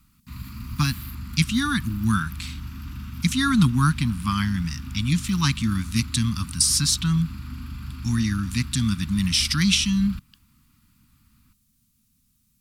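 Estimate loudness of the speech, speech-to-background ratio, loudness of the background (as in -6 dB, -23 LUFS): -23.0 LUFS, 13.5 dB, -36.5 LUFS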